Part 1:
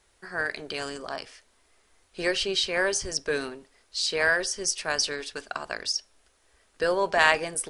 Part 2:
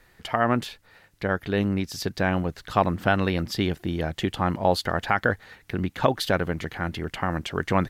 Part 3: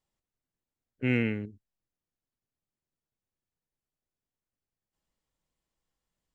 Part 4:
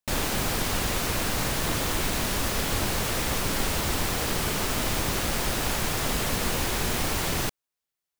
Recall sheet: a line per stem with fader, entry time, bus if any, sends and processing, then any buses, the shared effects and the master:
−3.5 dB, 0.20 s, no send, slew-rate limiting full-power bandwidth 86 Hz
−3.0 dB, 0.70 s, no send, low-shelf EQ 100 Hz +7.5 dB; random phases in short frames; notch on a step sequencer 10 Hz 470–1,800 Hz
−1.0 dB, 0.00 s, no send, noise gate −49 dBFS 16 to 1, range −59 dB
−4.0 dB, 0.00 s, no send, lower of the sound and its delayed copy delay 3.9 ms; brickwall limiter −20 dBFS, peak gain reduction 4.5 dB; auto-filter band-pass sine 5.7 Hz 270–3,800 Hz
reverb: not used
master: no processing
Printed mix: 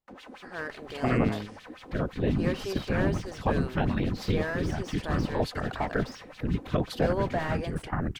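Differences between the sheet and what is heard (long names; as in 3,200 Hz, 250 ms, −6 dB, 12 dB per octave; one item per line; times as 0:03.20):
stem 3: missing noise gate −49 dBFS 16 to 1, range −59 dB
master: extra high-shelf EQ 2,100 Hz −9 dB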